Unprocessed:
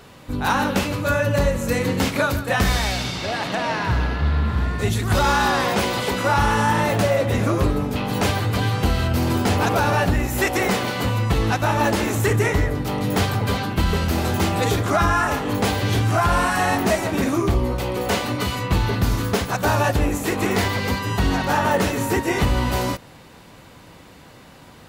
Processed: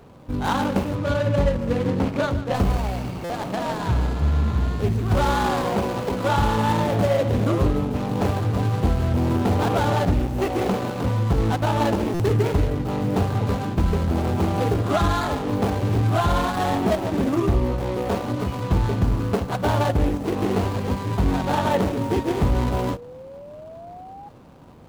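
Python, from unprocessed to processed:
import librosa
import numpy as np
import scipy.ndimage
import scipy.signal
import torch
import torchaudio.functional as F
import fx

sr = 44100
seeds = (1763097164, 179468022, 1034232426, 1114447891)

y = scipy.signal.medfilt(x, 25)
y = fx.high_shelf(y, sr, hz=8100.0, db=-10.5, at=(0.95, 2.54))
y = fx.spec_paint(y, sr, seeds[0], shape='rise', start_s=22.39, length_s=1.9, low_hz=370.0, high_hz=830.0, level_db=-40.0)
y = fx.buffer_glitch(y, sr, at_s=(3.24, 12.14), block=256, repeats=9)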